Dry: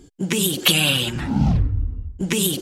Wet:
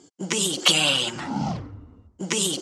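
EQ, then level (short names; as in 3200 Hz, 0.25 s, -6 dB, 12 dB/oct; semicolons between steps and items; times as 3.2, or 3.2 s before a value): speaker cabinet 200–7700 Hz, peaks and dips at 240 Hz -4 dB, 410 Hz -4 dB, 1700 Hz -8 dB, 2500 Hz -8 dB, 3700 Hz -7 dB; low shelf 450 Hz -9 dB; +4.5 dB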